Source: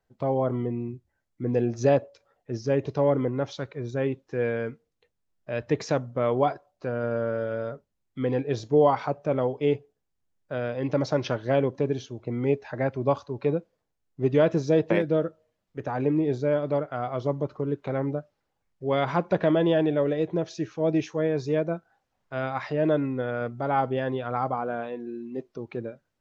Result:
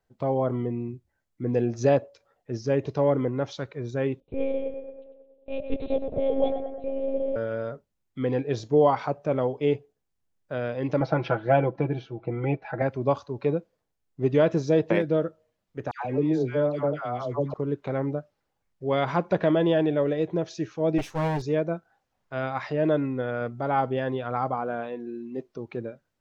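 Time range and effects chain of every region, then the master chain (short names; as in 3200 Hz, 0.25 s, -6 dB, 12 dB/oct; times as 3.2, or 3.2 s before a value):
4.2–7.36 Chebyshev band-stop 670–3000 Hz + tape echo 0.109 s, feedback 67%, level -6 dB, low-pass 1900 Hz + monotone LPC vocoder at 8 kHz 270 Hz
11–12.82 air absorption 290 m + comb 6 ms, depth 74% + small resonant body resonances 770/1400/2300 Hz, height 10 dB, ringing for 25 ms
15.91–17.54 upward compressor, threshold -39 dBFS + dispersion lows, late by 0.139 s, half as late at 1100 Hz
20.98–21.42 minimum comb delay 7.6 ms + mismatched tape noise reduction encoder only
whole clip: dry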